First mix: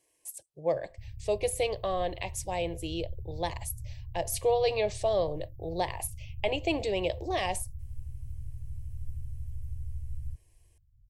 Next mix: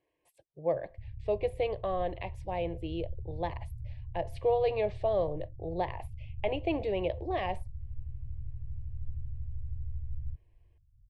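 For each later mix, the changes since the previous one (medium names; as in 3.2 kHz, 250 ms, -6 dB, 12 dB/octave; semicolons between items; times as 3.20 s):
master: add distance through air 450 m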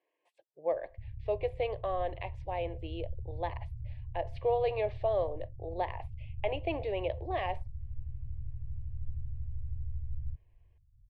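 speech: add band-pass 430–3800 Hz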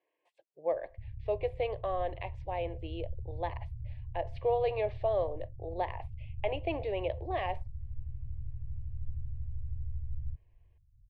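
master: add treble shelf 8.6 kHz -7 dB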